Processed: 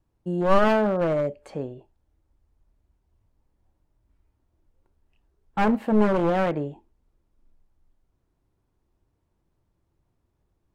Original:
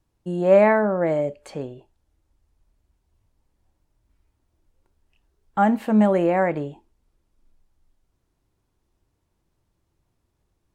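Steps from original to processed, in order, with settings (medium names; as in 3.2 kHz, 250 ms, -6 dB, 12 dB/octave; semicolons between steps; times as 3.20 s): one-sided wavefolder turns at -18.5 dBFS; treble shelf 2.2 kHz -9 dB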